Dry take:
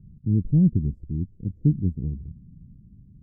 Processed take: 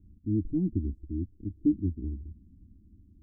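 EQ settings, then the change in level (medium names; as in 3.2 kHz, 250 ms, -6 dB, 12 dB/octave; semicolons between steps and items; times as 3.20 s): peaking EQ 83 Hz +6.5 dB 1.2 oct; peaking EQ 310 Hz +10.5 dB 0.39 oct; static phaser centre 530 Hz, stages 6; -5.5 dB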